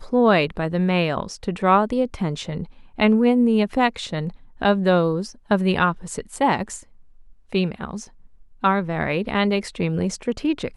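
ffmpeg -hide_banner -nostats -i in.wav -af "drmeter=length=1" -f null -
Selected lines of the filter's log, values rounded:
Channel 1: DR: 10.7
Overall DR: 10.7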